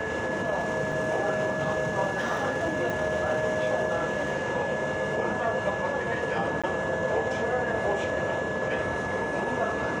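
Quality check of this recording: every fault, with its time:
tone 1700 Hz -33 dBFS
0.92 gap 2.9 ms
2.9 pop
6.62–6.64 gap 16 ms

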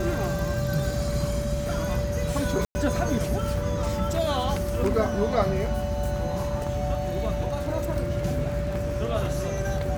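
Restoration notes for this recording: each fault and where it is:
tone 580 Hz -30 dBFS
2.65–2.75 gap 0.1 s

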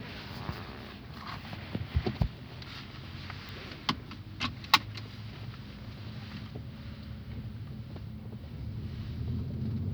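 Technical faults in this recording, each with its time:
3.49 pop

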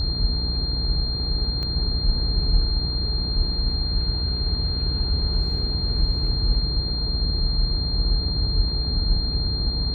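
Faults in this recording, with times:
buzz 60 Hz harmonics 36 -28 dBFS
tone 4200 Hz -27 dBFS
1.63 pop -19 dBFS

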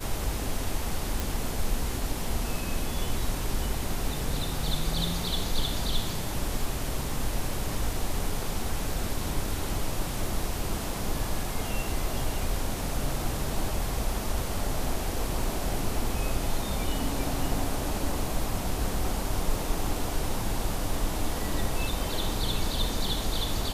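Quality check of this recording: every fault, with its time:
1.2 pop

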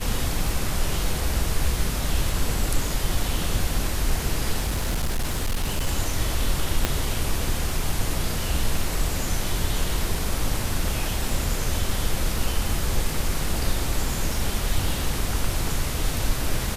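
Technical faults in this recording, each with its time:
tick 33 1/3 rpm
4.6–5.87 clipped -20 dBFS
6.85 pop -5 dBFS

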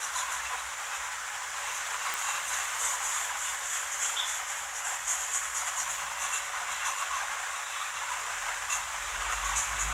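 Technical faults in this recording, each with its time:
2.14 pop

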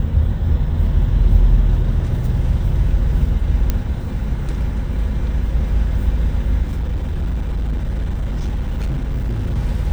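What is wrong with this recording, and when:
3.7 pop -5 dBFS
6.62–9.56 clipped -17 dBFS

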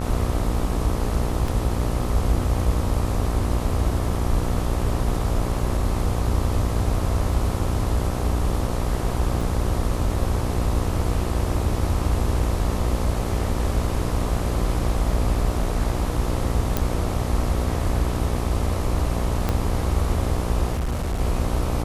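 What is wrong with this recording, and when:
buzz 60 Hz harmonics 22 -26 dBFS
1.48 gap 3.1 ms
9.41 gap 4.4 ms
16.77 pop -7 dBFS
19.49 pop -9 dBFS
20.72–21.21 clipped -21 dBFS

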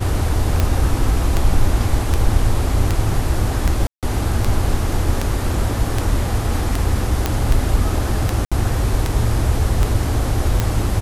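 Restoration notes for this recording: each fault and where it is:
tick 78 rpm -4 dBFS
3.87–4.03 gap 0.157 s
7.26 pop -3 dBFS
8.45–8.52 gap 66 ms

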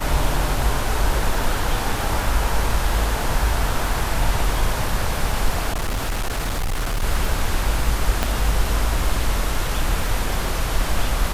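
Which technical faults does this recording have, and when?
crackle 22/s -25 dBFS
5.71–7.04 clipped -19 dBFS
8.23 pop -5 dBFS

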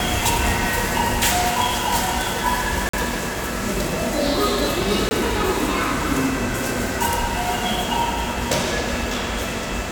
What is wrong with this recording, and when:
2.89–2.93 gap 44 ms
5.09–5.11 gap 20 ms

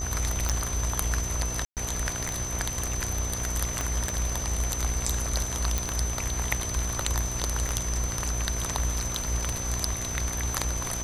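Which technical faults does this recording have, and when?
buzz 60 Hz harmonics 20 -35 dBFS
tick 33 1/3 rpm -12 dBFS
tone 6100 Hz -33 dBFS
1.65–1.77 gap 0.118 s
3.81 pop -14 dBFS
5.78 pop

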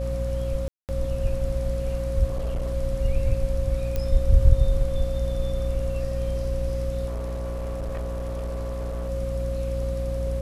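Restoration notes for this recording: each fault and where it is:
hum 60 Hz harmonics 5 -28 dBFS
tone 540 Hz -30 dBFS
0.68–0.89 gap 0.208 s
2.26–2.73 clipped -23.5 dBFS
3.96 pop -14 dBFS
7.06–9.1 clipped -27 dBFS

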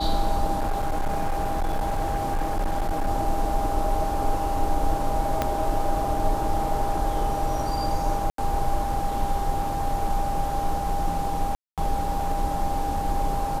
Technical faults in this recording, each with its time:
tone 800 Hz -27 dBFS
0.59–3.07 clipped -20.5 dBFS
5.42 pop -9 dBFS
8.3–8.38 gap 83 ms
11.55–11.78 gap 0.227 s

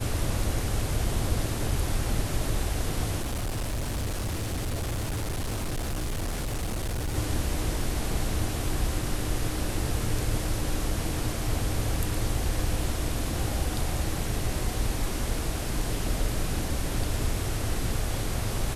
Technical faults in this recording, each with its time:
3.21–7.16 clipped -26.5 dBFS

